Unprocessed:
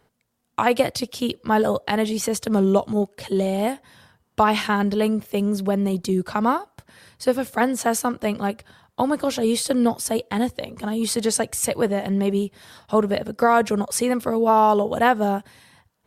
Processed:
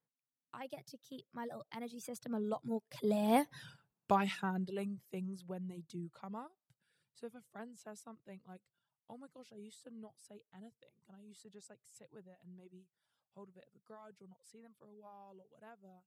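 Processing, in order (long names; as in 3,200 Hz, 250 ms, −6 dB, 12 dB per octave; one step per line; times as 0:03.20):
source passing by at 0:03.57, 29 m/s, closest 3.1 metres
reverb reduction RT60 0.77 s
low shelf with overshoot 100 Hz −10 dB, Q 3
level +1 dB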